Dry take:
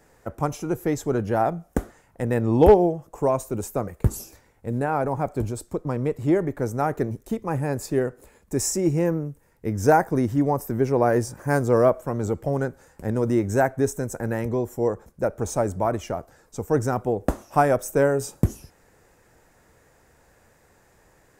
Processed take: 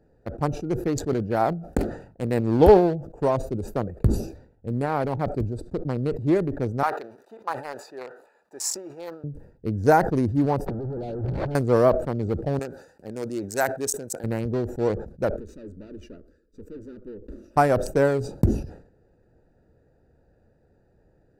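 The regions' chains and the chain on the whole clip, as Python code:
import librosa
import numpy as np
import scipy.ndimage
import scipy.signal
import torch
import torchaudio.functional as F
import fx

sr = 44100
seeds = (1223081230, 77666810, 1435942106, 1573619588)

y = fx.chain(x, sr, fx.low_shelf(hz=85.0, db=-7.5),
    fx.quant_float(bits=6),
    fx.sustainer(db_per_s=130.0), at=(0.88, 2.6))
y = fx.chain(y, sr, fx.law_mismatch(coded='mu'),
    fx.highpass_res(hz=1000.0, q=2.0), at=(6.83, 9.24))
y = fx.chain(y, sr, fx.clip_1bit(),
    fx.lowpass(hz=1300.0, slope=24),
    fx.over_compress(threshold_db=-26.0, ratio=-0.5), at=(10.66, 11.55))
y = fx.chain(y, sr, fx.highpass(hz=730.0, slope=6),
    fx.high_shelf(hz=3100.0, db=10.5), at=(12.59, 14.24))
y = fx.chain(y, sr, fx.peak_eq(hz=1000.0, db=-7.5, octaves=0.25),
    fx.tube_stage(drive_db=31.0, bias=0.6),
    fx.fixed_phaser(hz=310.0, stages=4), at=(15.36, 17.57))
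y = fx.wiener(y, sr, points=41)
y = fx.peak_eq(y, sr, hz=4400.0, db=11.0, octaves=0.31)
y = fx.sustainer(y, sr, db_per_s=99.0)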